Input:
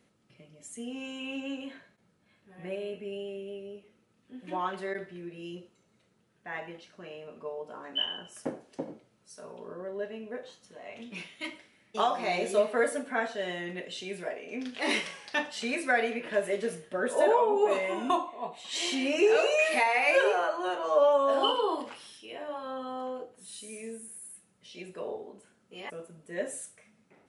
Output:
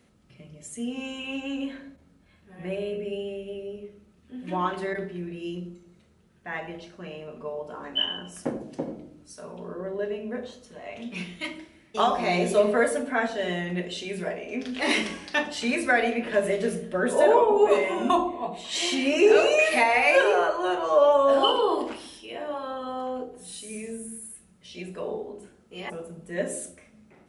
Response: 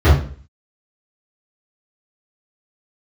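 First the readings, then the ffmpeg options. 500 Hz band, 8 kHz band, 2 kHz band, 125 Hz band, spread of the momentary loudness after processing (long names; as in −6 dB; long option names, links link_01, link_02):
+5.0 dB, +4.5 dB, +4.5 dB, +11.0 dB, 21 LU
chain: -filter_complex "[0:a]asplit=2[link_01][link_02];[link_02]equalizer=frequency=91:width=1.1:gain=4.5[link_03];[1:a]atrim=start_sample=2205,asetrate=24696,aresample=44100,lowpass=frequency=1100:width=0.5412,lowpass=frequency=1100:width=1.3066[link_04];[link_03][link_04]afir=irnorm=-1:irlink=0,volume=-36dB[link_05];[link_01][link_05]amix=inputs=2:normalize=0,volume=4.5dB"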